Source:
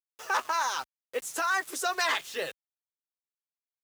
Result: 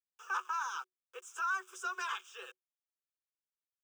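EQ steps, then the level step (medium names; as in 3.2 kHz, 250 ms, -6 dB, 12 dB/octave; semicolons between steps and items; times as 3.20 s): rippled Chebyshev high-pass 360 Hz, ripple 9 dB; static phaser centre 2.9 kHz, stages 8; -3.0 dB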